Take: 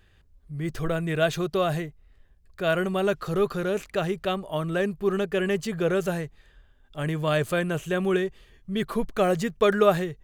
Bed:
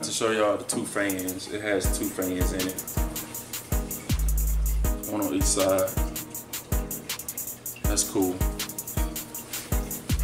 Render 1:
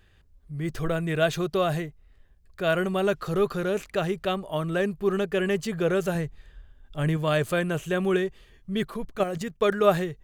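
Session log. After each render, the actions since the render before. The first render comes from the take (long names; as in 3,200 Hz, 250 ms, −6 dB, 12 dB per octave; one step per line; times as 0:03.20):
0:06.15–0:07.17: low-shelf EQ 150 Hz +8.5 dB
0:08.88–0:09.85: output level in coarse steps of 10 dB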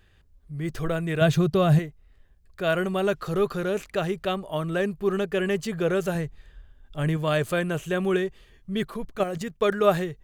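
0:01.21–0:01.79: parametric band 120 Hz +13.5 dB 1.8 octaves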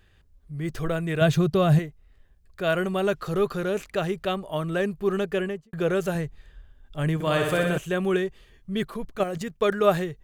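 0:05.32–0:05.73: fade out and dull
0:07.14–0:07.78: flutter between parallel walls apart 10.6 metres, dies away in 0.97 s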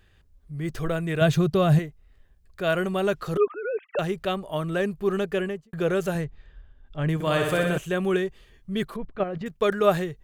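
0:03.37–0:03.99: three sine waves on the formant tracks
0:06.24–0:07.09: high-frequency loss of the air 140 metres
0:08.96–0:09.46: high-frequency loss of the air 350 metres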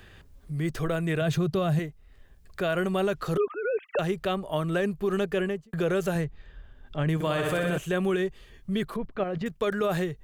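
brickwall limiter −18 dBFS, peak gain reduction 10.5 dB
multiband upward and downward compressor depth 40%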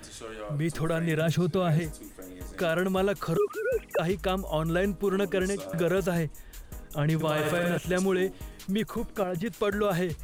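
mix in bed −16 dB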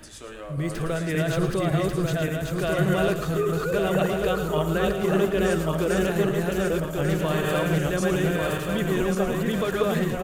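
feedback delay that plays each chunk backwards 572 ms, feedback 64%, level 0 dB
on a send: single-tap delay 111 ms −10.5 dB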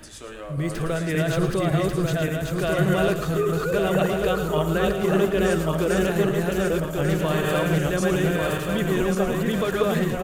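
level +1.5 dB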